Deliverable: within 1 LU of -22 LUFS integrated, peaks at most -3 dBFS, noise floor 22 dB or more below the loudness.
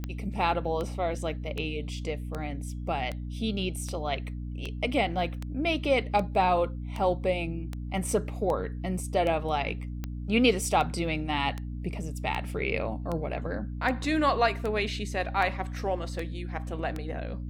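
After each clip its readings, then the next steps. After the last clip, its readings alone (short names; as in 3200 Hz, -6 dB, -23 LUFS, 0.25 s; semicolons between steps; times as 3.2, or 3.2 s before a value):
clicks 23; hum 60 Hz; harmonics up to 300 Hz; hum level -33 dBFS; loudness -29.5 LUFS; peak -9.0 dBFS; loudness target -22.0 LUFS
-> de-click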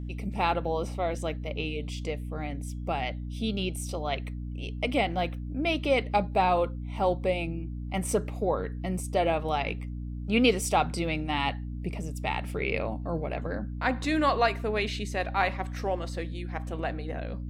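clicks 0; hum 60 Hz; harmonics up to 300 Hz; hum level -33 dBFS
-> notches 60/120/180/240/300 Hz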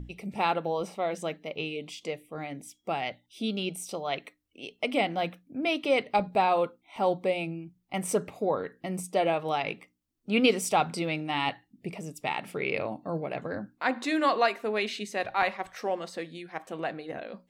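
hum none; loudness -30.0 LUFS; peak -9.0 dBFS; loudness target -22.0 LUFS
-> gain +8 dB; limiter -3 dBFS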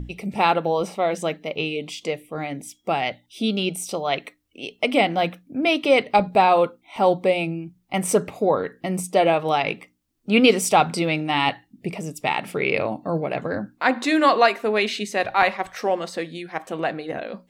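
loudness -22.5 LUFS; peak -3.0 dBFS; noise floor -65 dBFS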